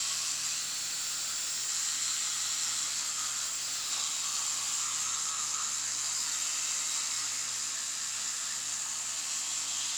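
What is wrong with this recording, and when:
0:00.60–0:01.70: clipping −31 dBFS
0:03.44–0:03.92: clipping −30.5 dBFS

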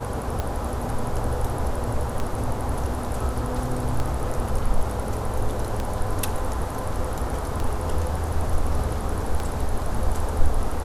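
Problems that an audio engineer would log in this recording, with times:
scratch tick 33 1/3 rpm −13 dBFS

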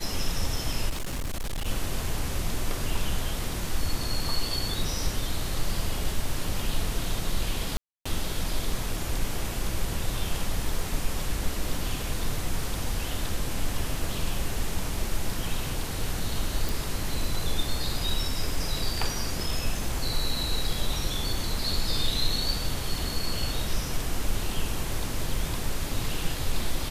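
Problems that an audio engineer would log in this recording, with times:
0:00.89–0:01.68: clipping −27 dBFS
0:07.77–0:08.05: drop-out 285 ms
0:16.69: click

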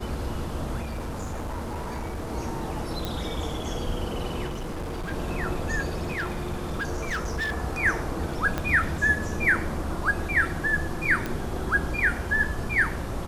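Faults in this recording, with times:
0:00.82–0:02.30: clipping −28.5 dBFS
0:03.05: click
0:04.46–0:05.13: clipping −29 dBFS
0:05.99–0:07.53: clipping −25 dBFS
0:08.58: click −13 dBFS
0:11.26: click −15 dBFS

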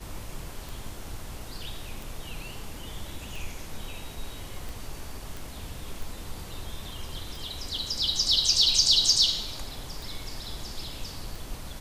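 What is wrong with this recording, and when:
scratch tick 45 rpm
0:05.37: click

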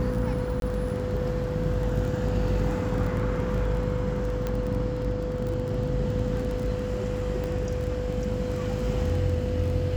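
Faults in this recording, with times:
mains buzz 50 Hz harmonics 14 −32 dBFS
surface crackle 17 per second −31 dBFS
whistle 500 Hz −31 dBFS
0:00.60–0:00.62: drop-out 22 ms
0:04.47: click −16 dBFS
0:07.44: click −20 dBFS

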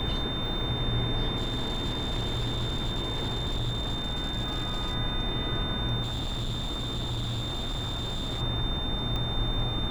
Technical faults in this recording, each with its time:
whistle 3,600 Hz −33 dBFS
0:01.36–0:04.95: clipping −25.5 dBFS
0:06.02–0:08.42: clipping −28 dBFS
0:09.16: click −20 dBFS

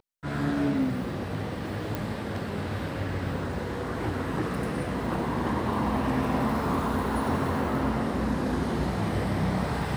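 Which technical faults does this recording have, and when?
0:01.95: click

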